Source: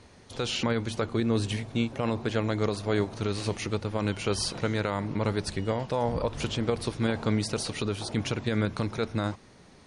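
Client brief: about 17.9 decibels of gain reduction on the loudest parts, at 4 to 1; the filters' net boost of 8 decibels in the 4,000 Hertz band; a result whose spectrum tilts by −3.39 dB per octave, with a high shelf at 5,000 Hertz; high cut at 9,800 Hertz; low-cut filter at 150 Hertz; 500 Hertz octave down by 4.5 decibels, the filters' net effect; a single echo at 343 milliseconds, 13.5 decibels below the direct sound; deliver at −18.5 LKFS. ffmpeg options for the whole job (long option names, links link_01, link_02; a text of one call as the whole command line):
ffmpeg -i in.wav -af "highpass=150,lowpass=9800,equalizer=frequency=500:width_type=o:gain=-5.5,equalizer=frequency=4000:width_type=o:gain=7.5,highshelf=frequency=5000:gain=5.5,acompressor=threshold=-42dB:ratio=4,aecho=1:1:343:0.211,volume=24dB" out.wav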